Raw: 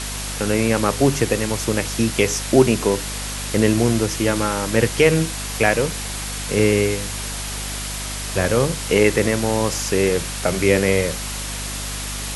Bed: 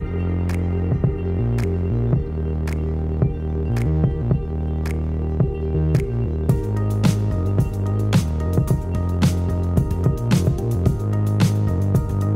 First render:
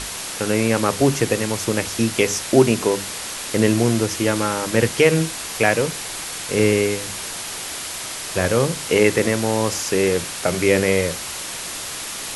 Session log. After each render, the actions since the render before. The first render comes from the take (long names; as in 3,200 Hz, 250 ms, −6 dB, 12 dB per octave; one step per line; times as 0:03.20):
mains-hum notches 50/100/150/200/250 Hz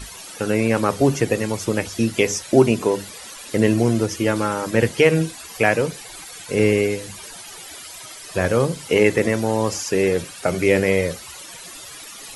broadband denoise 14 dB, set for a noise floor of −30 dBFS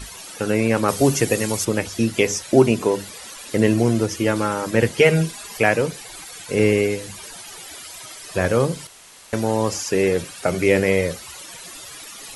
0:00.88–0:01.65: high-shelf EQ 4,900 Hz +11 dB
0:05.00–0:05.60: comb filter 4.9 ms, depth 62%
0:08.87–0:09.33: fill with room tone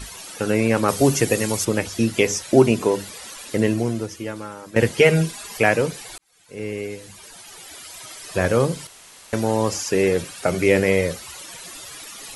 0:03.41–0:04.76: fade out quadratic, to −13.5 dB
0:06.18–0:08.25: fade in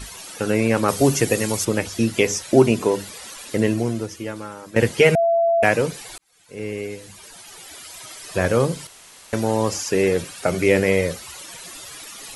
0:05.15–0:05.63: beep over 673 Hz −14.5 dBFS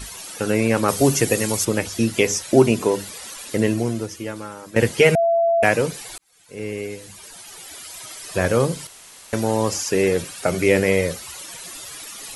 high-shelf EQ 6,900 Hz +4 dB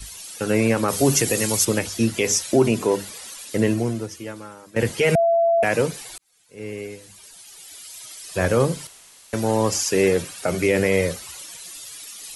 brickwall limiter −8.5 dBFS, peak gain reduction 7 dB
multiband upward and downward expander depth 40%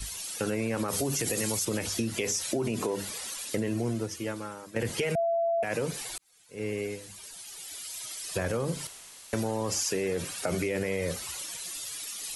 brickwall limiter −16 dBFS, peak gain reduction 10.5 dB
downward compressor, threshold −26 dBFS, peak gain reduction 7.5 dB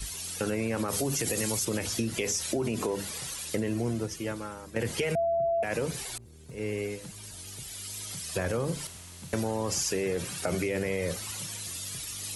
mix in bed −29.5 dB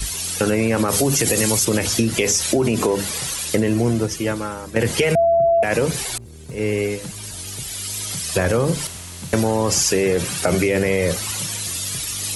level +11.5 dB